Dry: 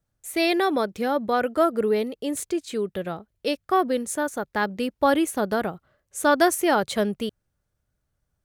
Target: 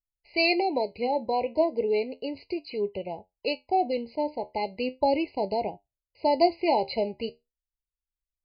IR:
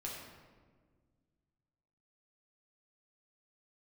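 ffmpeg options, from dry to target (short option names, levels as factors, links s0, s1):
-af "agate=range=0.355:threshold=0.00447:ratio=16:detection=peak,asetnsamples=n=441:p=0,asendcmd='0.78 highshelf g 2.5',highshelf=f=4100:g=9.5,anlmdn=0.0631,aresample=11025,aresample=44100,flanger=delay=9.7:depth=3.7:regen=65:speed=0.35:shape=triangular,equalizer=f=200:w=1:g=-9,afftfilt=real='re*eq(mod(floor(b*sr/1024/1000),2),0)':imag='im*eq(mod(floor(b*sr/1024/1000),2),0)':win_size=1024:overlap=0.75,volume=1.58"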